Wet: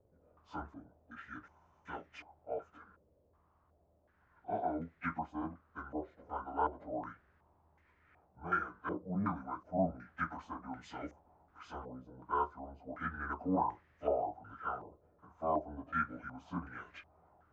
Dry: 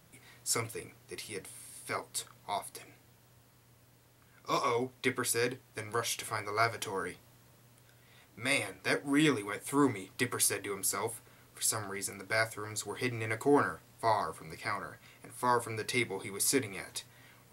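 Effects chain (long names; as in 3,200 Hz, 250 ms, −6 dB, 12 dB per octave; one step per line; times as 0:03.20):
phase-vocoder pitch shift without resampling −7.5 semitones
low-pass on a step sequencer 2.7 Hz 540–1,900 Hz
level −8 dB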